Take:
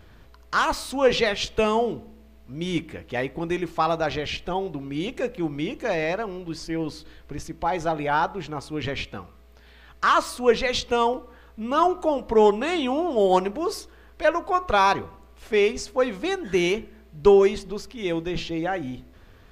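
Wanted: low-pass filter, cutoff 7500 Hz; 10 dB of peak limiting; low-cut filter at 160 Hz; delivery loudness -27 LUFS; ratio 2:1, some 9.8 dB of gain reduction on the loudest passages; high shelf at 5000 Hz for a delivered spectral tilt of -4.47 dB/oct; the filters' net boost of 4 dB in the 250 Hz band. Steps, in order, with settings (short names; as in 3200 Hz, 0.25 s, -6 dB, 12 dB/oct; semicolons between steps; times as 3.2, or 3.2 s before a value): HPF 160 Hz; LPF 7500 Hz; bell 250 Hz +6.5 dB; high shelf 5000 Hz +6 dB; compressor 2:1, threshold -27 dBFS; gain +5.5 dB; limiter -17.5 dBFS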